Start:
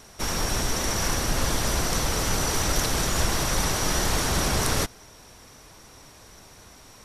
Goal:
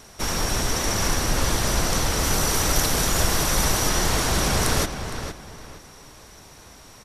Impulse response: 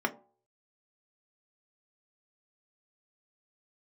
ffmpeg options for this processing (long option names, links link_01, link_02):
-filter_complex "[0:a]asettb=1/sr,asplit=3[link_01][link_02][link_03];[link_01]atrim=end=2.234[link_04];[link_02]atrim=start=2.23:end=3.89,asetpts=PTS-STARTPTS,afade=type=in:duration=0.004:curve=qsin,afade=type=out:start_time=1.656:duration=0.004:curve=qsin,highshelf=frequency=12000:gain=9[link_05];[link_03]atrim=start=3.886[link_06];[link_04][link_05]acrossfade=duration=0.004:curve1=hsin:curve2=qsin[link_07];[link_07][link_06]acrossfade=duration=0.004:curve1=qsin:curve2=hsin,asplit=2[link_08][link_09];[link_09]adelay=462,lowpass=frequency=4100:poles=1,volume=-8.5dB,asplit=2[link_10][link_11];[link_11]adelay=462,lowpass=frequency=4100:poles=1,volume=0.29,asplit=2[link_12][link_13];[link_13]adelay=462,lowpass=frequency=4100:poles=1,volume=0.29[link_14];[link_08][link_10][link_12][link_14]amix=inputs=4:normalize=0,volume=2dB"